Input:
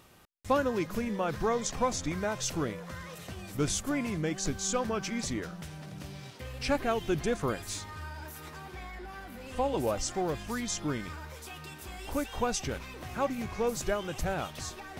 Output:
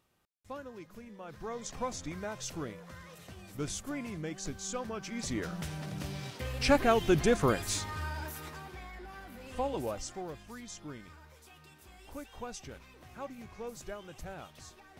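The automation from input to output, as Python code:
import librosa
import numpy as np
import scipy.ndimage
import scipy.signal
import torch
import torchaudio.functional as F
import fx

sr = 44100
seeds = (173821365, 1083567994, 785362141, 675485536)

y = fx.gain(x, sr, db=fx.line((1.16, -16.5), (1.75, -7.0), (5.05, -7.0), (5.57, 4.0), (8.17, 4.0), (8.82, -3.5), (9.64, -3.5), (10.46, -12.0)))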